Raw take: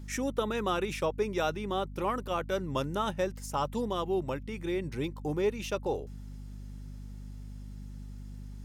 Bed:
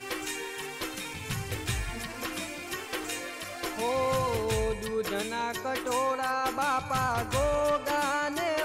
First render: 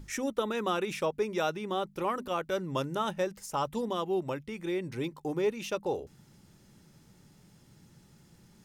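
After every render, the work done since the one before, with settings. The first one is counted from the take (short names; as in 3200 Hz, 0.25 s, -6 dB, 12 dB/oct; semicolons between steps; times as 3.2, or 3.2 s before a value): notches 50/100/150/200/250 Hz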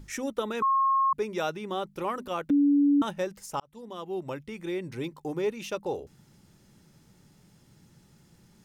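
0.62–1.13 bleep 1080 Hz -20.5 dBFS; 2.5–3.02 bleep 286 Hz -18 dBFS; 3.6–4.41 fade in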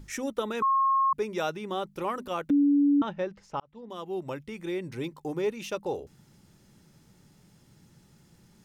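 2.63–3.9 air absorption 210 m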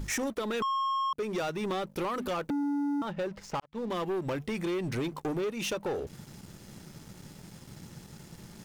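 compressor 16:1, threshold -35 dBFS, peak gain reduction 15 dB; sample leveller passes 3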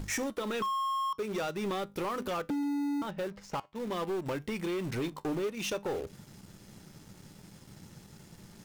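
resonator 100 Hz, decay 0.22 s, harmonics all, mix 50%; in parallel at -12 dB: bit-crush 6-bit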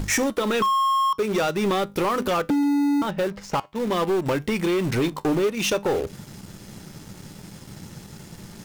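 gain +11 dB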